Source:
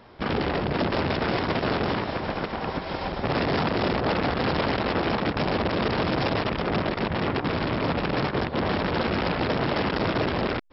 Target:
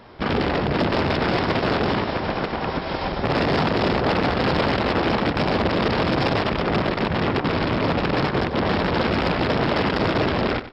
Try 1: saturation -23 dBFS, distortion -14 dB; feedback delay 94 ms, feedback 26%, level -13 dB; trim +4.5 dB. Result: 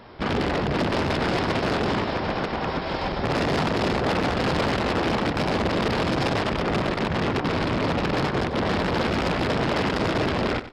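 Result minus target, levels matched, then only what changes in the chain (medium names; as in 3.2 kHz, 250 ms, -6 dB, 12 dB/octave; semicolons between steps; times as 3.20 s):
saturation: distortion +13 dB
change: saturation -14.5 dBFS, distortion -27 dB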